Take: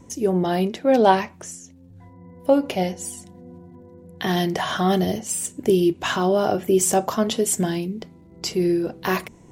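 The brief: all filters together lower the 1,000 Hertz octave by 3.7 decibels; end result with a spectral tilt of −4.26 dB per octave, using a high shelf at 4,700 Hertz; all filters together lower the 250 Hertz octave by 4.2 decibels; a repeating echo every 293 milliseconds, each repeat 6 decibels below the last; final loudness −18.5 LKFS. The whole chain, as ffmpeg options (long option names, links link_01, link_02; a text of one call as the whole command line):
ffmpeg -i in.wav -af "equalizer=frequency=250:width_type=o:gain=-6.5,equalizer=frequency=1000:width_type=o:gain=-4.5,highshelf=frequency=4700:gain=-4,aecho=1:1:293|586|879|1172|1465|1758:0.501|0.251|0.125|0.0626|0.0313|0.0157,volume=6dB" out.wav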